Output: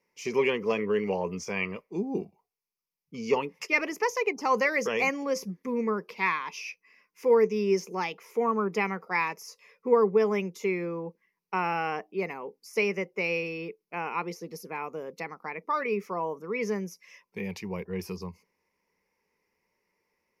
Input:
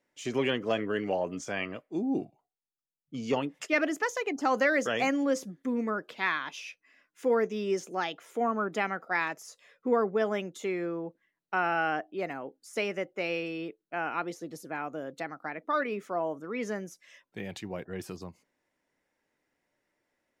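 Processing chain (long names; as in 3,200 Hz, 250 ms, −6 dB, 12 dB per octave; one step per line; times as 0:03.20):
EQ curve with evenly spaced ripples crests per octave 0.83, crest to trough 13 dB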